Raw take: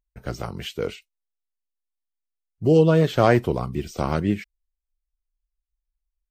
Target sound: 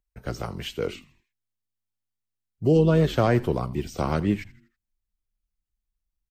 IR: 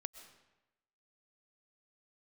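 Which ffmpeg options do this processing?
-filter_complex "[0:a]acrossover=split=290[s0][s1];[s1]acompressor=threshold=0.112:ratio=3[s2];[s0][s2]amix=inputs=2:normalize=0,asplit=5[s3][s4][s5][s6][s7];[s4]adelay=81,afreqshift=-110,volume=0.112[s8];[s5]adelay=162,afreqshift=-220,volume=0.0507[s9];[s6]adelay=243,afreqshift=-330,volume=0.0226[s10];[s7]adelay=324,afreqshift=-440,volume=0.0102[s11];[s3][s8][s9][s10][s11]amix=inputs=5:normalize=0,volume=0.891"

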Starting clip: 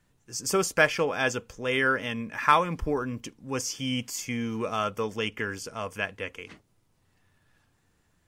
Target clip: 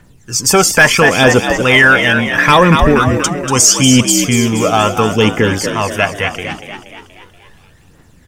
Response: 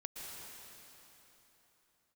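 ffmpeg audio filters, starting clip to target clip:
-filter_complex "[0:a]asettb=1/sr,asplit=3[s0][s1][s2];[s0]atrim=end=2.994[s3];[s1]atrim=start=2.99:end=4.12,asetpts=PTS-STARTPTS,afade=t=in:d=0.004:c=qsin,afade=t=out:st=1.126:d=0.004:c=qsin,equalizer=f=7800:w=0.99:g=11[s4];[s2]atrim=start=4.116[s5];[s3][s4]acrossfade=d=0.004:c1=hsin:c2=qsin[s6];[s6][s5]acrossfade=d=0.004:c1=qsin:c2=hsin,aphaser=in_gain=1:out_gain=1:delay=1.5:decay=0.55:speed=0.75:type=triangular,asplit=7[s7][s8][s9][s10][s11][s12][s13];[s8]adelay=238,afreqshift=63,volume=0.355[s14];[s9]adelay=476,afreqshift=126,volume=0.191[s15];[s10]adelay=714,afreqshift=189,volume=0.104[s16];[s11]adelay=952,afreqshift=252,volume=0.0556[s17];[s12]adelay=1190,afreqshift=315,volume=0.0302[s18];[s13]adelay=1428,afreqshift=378,volume=0.0162[s19];[s7][s14][s15][s16][s17][s18][s19]amix=inputs=7:normalize=0,apsyclip=8.41,volume=0.841"

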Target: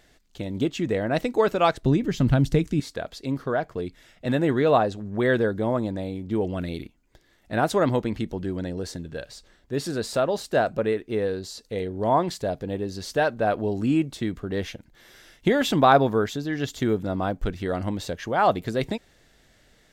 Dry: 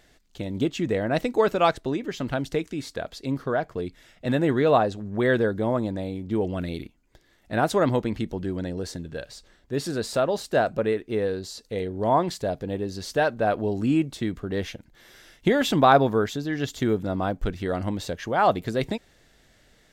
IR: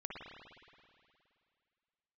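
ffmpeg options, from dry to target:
-filter_complex "[0:a]asettb=1/sr,asplit=3[s0][s1][s2];[s0]atrim=end=1.834[s3];[s1]atrim=start=1.83:end=2.8,asetpts=PTS-STARTPTS,afade=t=in:d=0.004:c=qsin,afade=t=out:st=0.966:d=0.004:c=qsin,bass=f=250:g=15,treble=f=4000:g=3[s4];[s2]atrim=start=2.796[s5];[s3][s4]acrossfade=d=0.004:c1=hsin:c2=qsin[s6];[s6][s5]acrossfade=d=0.004:c1=qsin:c2=hsin"

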